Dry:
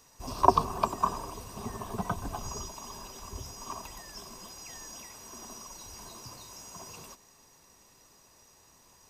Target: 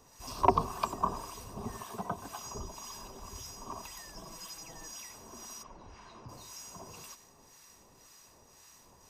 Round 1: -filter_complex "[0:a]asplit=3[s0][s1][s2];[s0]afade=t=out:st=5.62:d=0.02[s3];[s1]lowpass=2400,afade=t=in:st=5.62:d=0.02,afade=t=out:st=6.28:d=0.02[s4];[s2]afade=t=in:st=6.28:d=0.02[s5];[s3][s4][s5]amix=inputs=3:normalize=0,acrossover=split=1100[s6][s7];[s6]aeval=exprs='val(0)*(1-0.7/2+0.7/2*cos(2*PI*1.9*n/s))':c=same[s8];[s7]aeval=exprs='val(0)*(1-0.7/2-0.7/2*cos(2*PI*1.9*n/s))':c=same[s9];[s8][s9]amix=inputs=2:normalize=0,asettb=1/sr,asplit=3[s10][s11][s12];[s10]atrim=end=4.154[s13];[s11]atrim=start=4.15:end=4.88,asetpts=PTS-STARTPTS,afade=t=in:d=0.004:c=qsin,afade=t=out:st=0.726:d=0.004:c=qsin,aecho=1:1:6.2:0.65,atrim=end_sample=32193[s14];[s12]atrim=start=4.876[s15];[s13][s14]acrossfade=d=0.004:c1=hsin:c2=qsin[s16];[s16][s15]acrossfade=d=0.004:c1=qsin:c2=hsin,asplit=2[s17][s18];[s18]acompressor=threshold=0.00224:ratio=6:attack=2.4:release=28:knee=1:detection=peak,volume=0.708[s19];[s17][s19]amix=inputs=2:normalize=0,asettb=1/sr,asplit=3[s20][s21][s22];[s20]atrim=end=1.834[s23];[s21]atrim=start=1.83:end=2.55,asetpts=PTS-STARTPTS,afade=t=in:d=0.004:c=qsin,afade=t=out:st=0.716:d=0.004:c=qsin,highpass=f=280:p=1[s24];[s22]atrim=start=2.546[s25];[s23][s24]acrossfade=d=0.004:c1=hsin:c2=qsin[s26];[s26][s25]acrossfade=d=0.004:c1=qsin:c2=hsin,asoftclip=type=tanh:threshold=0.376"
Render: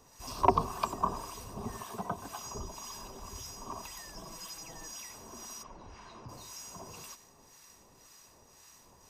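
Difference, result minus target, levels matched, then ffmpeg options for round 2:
compression: peak gain reduction -5.5 dB
-filter_complex "[0:a]asplit=3[s0][s1][s2];[s0]afade=t=out:st=5.62:d=0.02[s3];[s1]lowpass=2400,afade=t=in:st=5.62:d=0.02,afade=t=out:st=6.28:d=0.02[s4];[s2]afade=t=in:st=6.28:d=0.02[s5];[s3][s4][s5]amix=inputs=3:normalize=0,acrossover=split=1100[s6][s7];[s6]aeval=exprs='val(0)*(1-0.7/2+0.7/2*cos(2*PI*1.9*n/s))':c=same[s8];[s7]aeval=exprs='val(0)*(1-0.7/2-0.7/2*cos(2*PI*1.9*n/s))':c=same[s9];[s8][s9]amix=inputs=2:normalize=0,asettb=1/sr,asplit=3[s10][s11][s12];[s10]atrim=end=4.154[s13];[s11]atrim=start=4.15:end=4.88,asetpts=PTS-STARTPTS,afade=t=in:d=0.004:c=qsin,afade=t=out:st=0.726:d=0.004:c=qsin,aecho=1:1:6.2:0.65,atrim=end_sample=32193[s14];[s12]atrim=start=4.876[s15];[s13][s14]acrossfade=d=0.004:c1=hsin:c2=qsin[s16];[s16][s15]acrossfade=d=0.004:c1=qsin:c2=hsin,asplit=2[s17][s18];[s18]acompressor=threshold=0.00106:ratio=6:attack=2.4:release=28:knee=1:detection=peak,volume=0.708[s19];[s17][s19]amix=inputs=2:normalize=0,asettb=1/sr,asplit=3[s20][s21][s22];[s20]atrim=end=1.834[s23];[s21]atrim=start=1.83:end=2.55,asetpts=PTS-STARTPTS,afade=t=in:d=0.004:c=qsin,afade=t=out:st=0.716:d=0.004:c=qsin,highpass=f=280:p=1[s24];[s22]atrim=start=2.546[s25];[s23][s24]acrossfade=d=0.004:c1=hsin:c2=qsin[s26];[s26][s25]acrossfade=d=0.004:c1=qsin:c2=hsin,asoftclip=type=tanh:threshold=0.376"

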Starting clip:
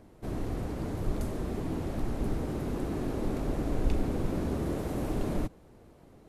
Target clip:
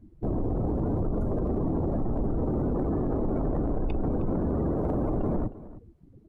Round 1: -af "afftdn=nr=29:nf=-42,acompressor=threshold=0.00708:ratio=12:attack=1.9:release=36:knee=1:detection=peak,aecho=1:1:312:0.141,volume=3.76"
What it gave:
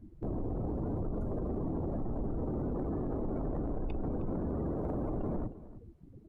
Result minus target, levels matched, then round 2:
compression: peak gain reduction +7.5 dB
-af "afftdn=nr=29:nf=-42,acompressor=threshold=0.0178:ratio=12:attack=1.9:release=36:knee=1:detection=peak,aecho=1:1:312:0.141,volume=3.76"

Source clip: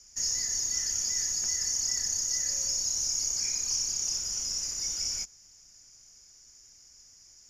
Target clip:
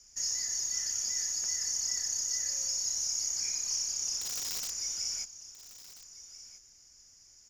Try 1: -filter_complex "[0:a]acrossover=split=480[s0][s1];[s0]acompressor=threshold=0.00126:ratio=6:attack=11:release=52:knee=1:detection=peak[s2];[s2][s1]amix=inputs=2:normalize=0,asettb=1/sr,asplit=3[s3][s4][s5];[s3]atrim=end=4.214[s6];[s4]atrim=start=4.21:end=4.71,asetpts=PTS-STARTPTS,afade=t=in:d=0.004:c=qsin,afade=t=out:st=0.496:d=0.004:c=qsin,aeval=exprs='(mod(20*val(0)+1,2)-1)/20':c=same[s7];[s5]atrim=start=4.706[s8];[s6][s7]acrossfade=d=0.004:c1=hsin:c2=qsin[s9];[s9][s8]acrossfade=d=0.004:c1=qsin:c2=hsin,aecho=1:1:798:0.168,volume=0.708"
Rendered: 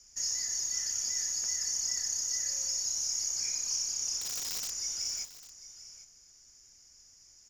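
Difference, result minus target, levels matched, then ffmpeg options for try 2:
echo 537 ms early
-filter_complex "[0:a]acrossover=split=480[s0][s1];[s0]acompressor=threshold=0.00126:ratio=6:attack=11:release=52:knee=1:detection=peak[s2];[s2][s1]amix=inputs=2:normalize=0,asettb=1/sr,asplit=3[s3][s4][s5];[s3]atrim=end=4.214[s6];[s4]atrim=start=4.21:end=4.71,asetpts=PTS-STARTPTS,afade=t=in:d=0.004:c=qsin,afade=t=out:st=0.496:d=0.004:c=qsin,aeval=exprs='(mod(20*val(0)+1,2)-1)/20':c=same[s7];[s5]atrim=start=4.706[s8];[s6][s7]acrossfade=d=0.004:c1=hsin:c2=qsin[s9];[s9][s8]acrossfade=d=0.004:c1=qsin:c2=hsin,aecho=1:1:1335:0.168,volume=0.708"

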